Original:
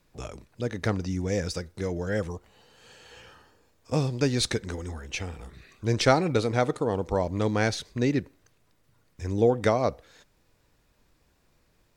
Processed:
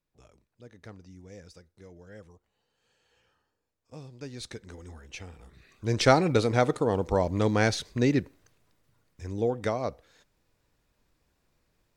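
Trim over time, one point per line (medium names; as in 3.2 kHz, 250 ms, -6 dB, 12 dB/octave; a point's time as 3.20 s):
3.95 s -19.5 dB
4.92 s -9 dB
5.42 s -9 dB
6.13 s +1 dB
8.21 s +1 dB
9.31 s -6 dB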